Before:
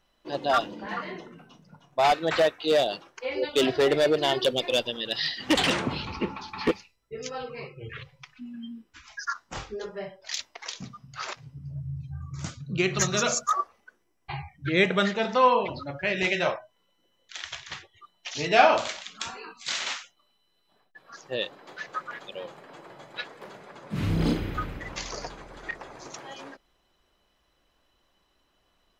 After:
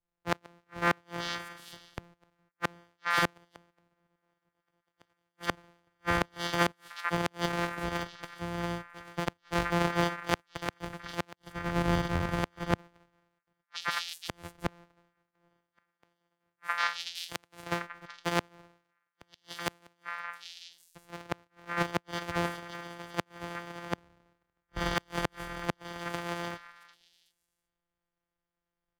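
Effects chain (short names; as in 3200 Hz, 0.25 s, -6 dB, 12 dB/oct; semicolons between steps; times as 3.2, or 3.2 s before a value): sample sorter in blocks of 256 samples; in parallel at -2 dB: compressor 4:1, threshold -41 dBFS, peak gain reduction 23 dB; on the sum: delay with a stepping band-pass 0.374 s, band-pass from 1600 Hz, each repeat 1.4 oct, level -3 dB; overdrive pedal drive 10 dB, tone 2100 Hz, clips at -3 dBFS; flipped gate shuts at -17 dBFS, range -35 dB; three-band expander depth 100%; gain +2.5 dB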